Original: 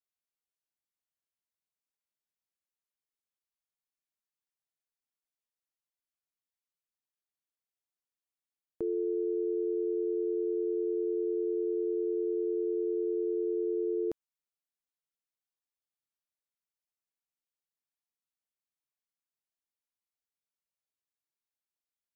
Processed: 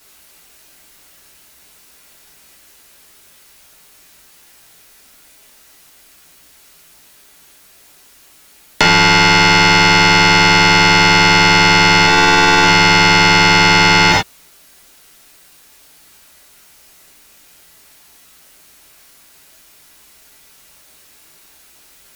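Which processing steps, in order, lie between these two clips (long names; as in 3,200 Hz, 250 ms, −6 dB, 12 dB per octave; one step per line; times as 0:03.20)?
leveller curve on the samples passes 1
sine wavefolder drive 19 dB, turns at −22 dBFS
0:12.05–0:12.64: double-tracking delay 14 ms −3 dB
reverb whose tail is shaped and stops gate 120 ms falling, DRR −3.5 dB
boost into a limiter +23 dB
level −1 dB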